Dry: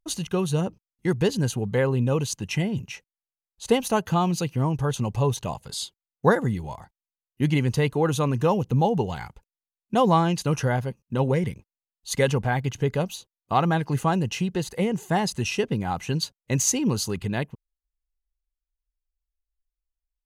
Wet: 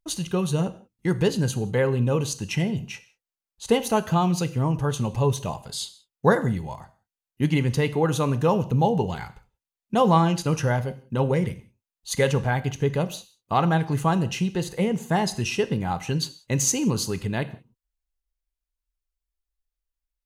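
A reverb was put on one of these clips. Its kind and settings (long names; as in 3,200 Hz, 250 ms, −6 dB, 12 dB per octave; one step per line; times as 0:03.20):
reverb whose tail is shaped and stops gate 210 ms falling, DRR 11 dB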